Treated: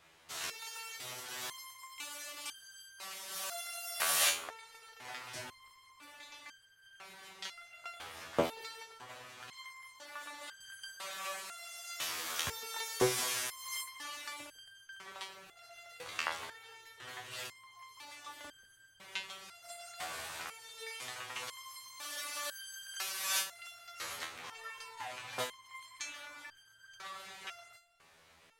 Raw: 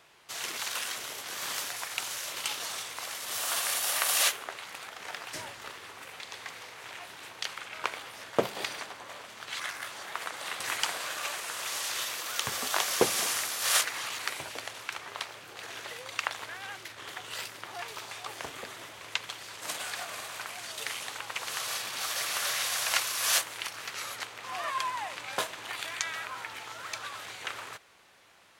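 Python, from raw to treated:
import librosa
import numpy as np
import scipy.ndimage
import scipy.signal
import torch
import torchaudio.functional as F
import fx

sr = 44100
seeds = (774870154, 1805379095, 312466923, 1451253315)

y = fx.low_shelf(x, sr, hz=92.0, db=11.5)
y = fx.resonator_held(y, sr, hz=2.0, low_hz=82.0, high_hz=1600.0)
y = F.gain(torch.from_numpy(y), 5.0).numpy()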